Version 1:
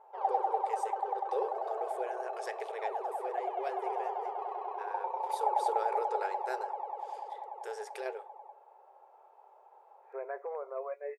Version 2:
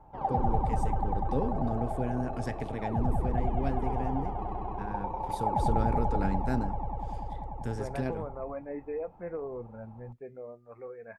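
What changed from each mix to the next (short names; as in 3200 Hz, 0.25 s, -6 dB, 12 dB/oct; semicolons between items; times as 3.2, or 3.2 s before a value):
second voice: entry -2.35 s; master: remove brick-wall FIR high-pass 370 Hz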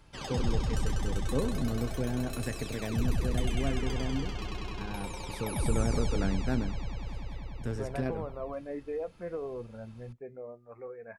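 background: remove synth low-pass 820 Hz, resonance Q 7.5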